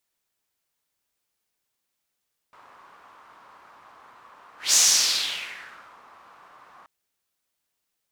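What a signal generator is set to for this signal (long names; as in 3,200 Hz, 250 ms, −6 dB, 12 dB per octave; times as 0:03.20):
pass-by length 4.33 s, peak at 0:02.21, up 0.18 s, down 1.34 s, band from 1,100 Hz, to 6,300 Hz, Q 3.1, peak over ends 34.5 dB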